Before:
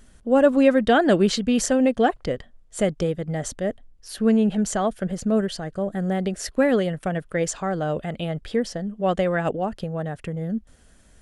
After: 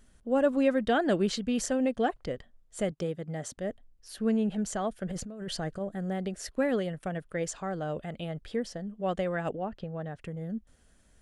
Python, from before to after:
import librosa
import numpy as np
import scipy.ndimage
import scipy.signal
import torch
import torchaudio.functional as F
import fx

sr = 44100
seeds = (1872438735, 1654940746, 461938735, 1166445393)

y = fx.highpass(x, sr, hz=97.0, slope=12, at=(2.91, 3.58))
y = fx.over_compress(y, sr, threshold_db=-29.0, ratio=-1.0, at=(5.06, 5.79), fade=0.02)
y = fx.lowpass(y, sr, hz=fx.line((9.55, 3000.0), (10.19, 6200.0)), slope=12, at=(9.55, 10.19), fade=0.02)
y = F.gain(torch.from_numpy(y), -8.5).numpy()